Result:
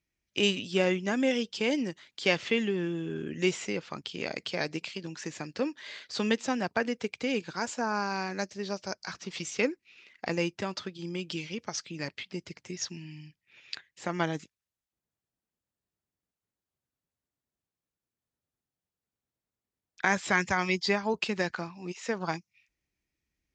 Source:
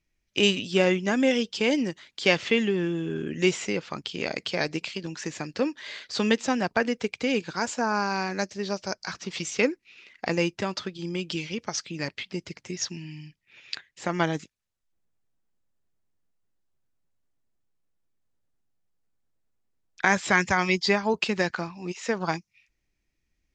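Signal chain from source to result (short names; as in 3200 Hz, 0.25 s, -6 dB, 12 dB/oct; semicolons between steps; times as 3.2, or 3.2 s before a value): HPF 52 Hz; gain -4.5 dB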